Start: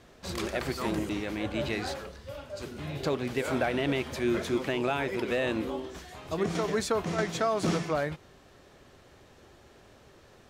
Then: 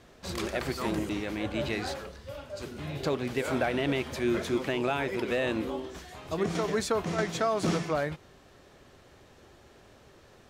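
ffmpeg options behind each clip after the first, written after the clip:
-af anull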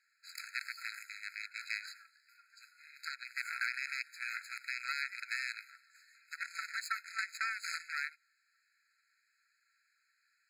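-af "aeval=exprs='0.133*(cos(1*acos(clip(val(0)/0.133,-1,1)))-cos(1*PI/2))+0.0188*(cos(2*acos(clip(val(0)/0.133,-1,1)))-cos(2*PI/2))+0.0376*(cos(3*acos(clip(val(0)/0.133,-1,1)))-cos(3*PI/2))':c=same,alimiter=limit=-19.5dB:level=0:latency=1:release=13,afftfilt=real='re*eq(mod(floor(b*sr/1024/1300),2),1)':imag='im*eq(mod(floor(b*sr/1024/1300),2),1)':win_size=1024:overlap=0.75,volume=4.5dB"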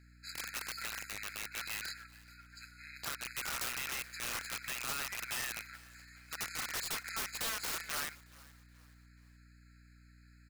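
-filter_complex "[0:a]aeval=exprs='(mod(70.8*val(0)+1,2)-1)/70.8':c=same,aeval=exprs='val(0)+0.000562*(sin(2*PI*60*n/s)+sin(2*PI*2*60*n/s)/2+sin(2*PI*3*60*n/s)/3+sin(2*PI*4*60*n/s)/4+sin(2*PI*5*60*n/s)/5)':c=same,asplit=4[a][b][c][d];[b]adelay=426,afreqshift=-52,volume=-22dB[e];[c]adelay=852,afreqshift=-104,volume=-30.9dB[f];[d]adelay=1278,afreqshift=-156,volume=-39.7dB[g];[a][e][f][g]amix=inputs=4:normalize=0,volume=6dB"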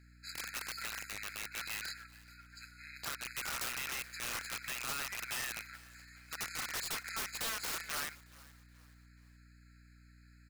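-af "volume=33.5dB,asoftclip=hard,volume=-33.5dB"

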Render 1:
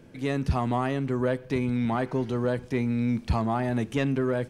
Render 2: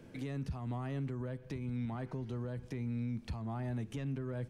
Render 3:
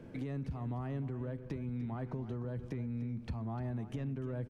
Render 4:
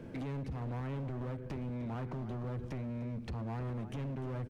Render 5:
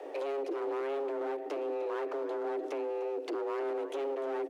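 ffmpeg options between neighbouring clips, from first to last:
-filter_complex "[0:a]acrossover=split=170[a][b];[b]acompressor=threshold=-36dB:ratio=6[c];[a][c]amix=inputs=2:normalize=0,alimiter=level_in=3.5dB:limit=-24dB:level=0:latency=1:release=289,volume=-3.5dB,volume=-3dB"
-af "highshelf=f=2.6k:g=-11.5,acompressor=threshold=-39dB:ratio=6,aecho=1:1:299:0.211,volume=4dB"
-af "asoftclip=type=hard:threshold=-39.5dB,volume=3.5dB"
-af "afreqshift=270,volume=4dB"

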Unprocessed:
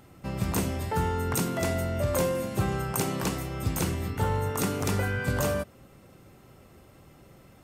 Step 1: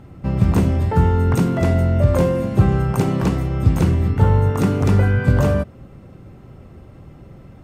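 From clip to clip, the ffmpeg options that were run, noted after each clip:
-af "lowpass=f=2.1k:p=1,lowshelf=f=260:g=10,volume=6dB"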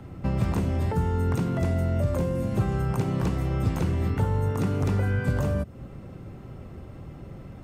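-filter_complex "[0:a]acrossover=split=130|370|5600[a][b][c][d];[a]acompressor=threshold=-27dB:ratio=4[e];[b]acompressor=threshold=-31dB:ratio=4[f];[c]acompressor=threshold=-34dB:ratio=4[g];[d]acompressor=threshold=-51dB:ratio=4[h];[e][f][g][h]amix=inputs=4:normalize=0"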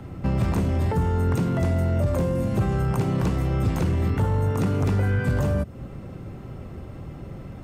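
-af "asoftclip=type=tanh:threshold=-18dB,volume=4dB"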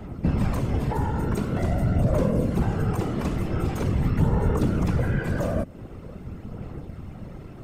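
-af "aphaser=in_gain=1:out_gain=1:delay=3.5:decay=0.32:speed=0.45:type=sinusoidal,afftfilt=real='hypot(re,im)*cos(2*PI*random(0))':imag='hypot(re,im)*sin(2*PI*random(1))':win_size=512:overlap=0.75,volume=4dB"

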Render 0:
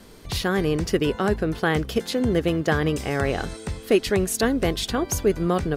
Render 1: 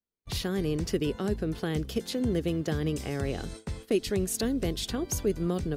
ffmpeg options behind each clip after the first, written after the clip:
-filter_complex "[0:a]acrossover=split=470|3000[a][b][c];[b]acompressor=threshold=-37dB:ratio=4[d];[a][d][c]amix=inputs=3:normalize=0,agate=range=-44dB:threshold=-36dB:ratio=16:detection=peak,volume=-5dB"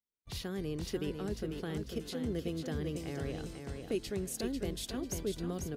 -af "aecho=1:1:495|990|1485|1980:0.501|0.17|0.0579|0.0197,volume=-8.5dB"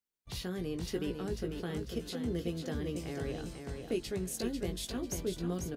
-filter_complex "[0:a]asplit=2[a][b];[b]adelay=17,volume=-7dB[c];[a][c]amix=inputs=2:normalize=0"

